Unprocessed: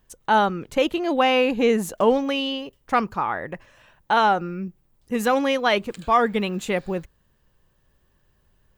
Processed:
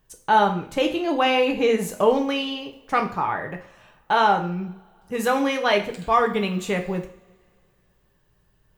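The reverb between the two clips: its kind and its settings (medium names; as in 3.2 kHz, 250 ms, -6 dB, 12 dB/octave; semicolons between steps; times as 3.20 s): two-slope reverb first 0.45 s, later 2.6 s, from -28 dB, DRR 3 dB; trim -1.5 dB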